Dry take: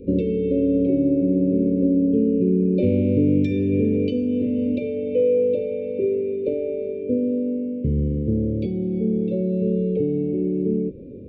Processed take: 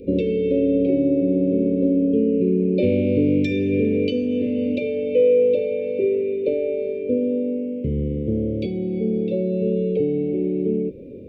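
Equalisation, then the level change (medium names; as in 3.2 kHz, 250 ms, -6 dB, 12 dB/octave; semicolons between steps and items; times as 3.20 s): bass shelf 460 Hz -12 dB; +8.5 dB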